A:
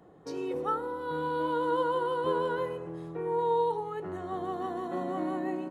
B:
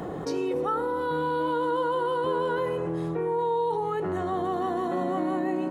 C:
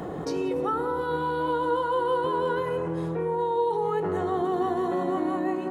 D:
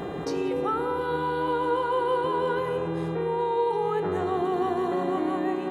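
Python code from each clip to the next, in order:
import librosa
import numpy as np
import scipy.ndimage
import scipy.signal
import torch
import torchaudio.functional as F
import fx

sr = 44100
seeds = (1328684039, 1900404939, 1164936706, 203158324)

y1 = fx.env_flatten(x, sr, amount_pct=70)
y2 = fx.echo_filtered(y1, sr, ms=181, feedback_pct=74, hz=940.0, wet_db=-7.0)
y3 = fx.dmg_buzz(y2, sr, base_hz=400.0, harmonics=10, level_db=-40.0, tilt_db=-7, odd_only=False)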